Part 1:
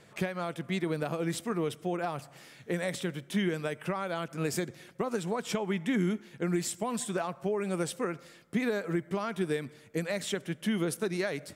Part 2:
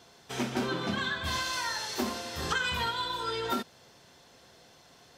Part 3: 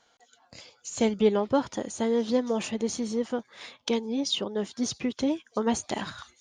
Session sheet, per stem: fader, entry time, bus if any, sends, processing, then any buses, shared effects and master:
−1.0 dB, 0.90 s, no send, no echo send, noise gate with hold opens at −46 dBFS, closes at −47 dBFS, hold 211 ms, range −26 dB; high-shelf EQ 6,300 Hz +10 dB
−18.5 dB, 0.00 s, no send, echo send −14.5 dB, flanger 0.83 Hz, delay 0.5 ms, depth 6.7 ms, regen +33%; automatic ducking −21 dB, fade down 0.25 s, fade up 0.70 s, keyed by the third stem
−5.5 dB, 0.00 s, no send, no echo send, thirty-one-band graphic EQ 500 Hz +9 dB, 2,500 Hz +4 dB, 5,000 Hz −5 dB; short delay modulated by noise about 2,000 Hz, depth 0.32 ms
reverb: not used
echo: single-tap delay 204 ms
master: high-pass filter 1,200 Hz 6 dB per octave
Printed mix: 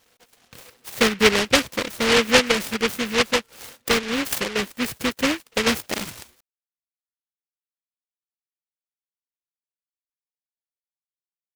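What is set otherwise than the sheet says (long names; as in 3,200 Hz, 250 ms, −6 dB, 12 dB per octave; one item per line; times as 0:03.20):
stem 1: muted
stem 3 −5.5 dB → +2.5 dB
master: missing high-pass filter 1,200 Hz 6 dB per octave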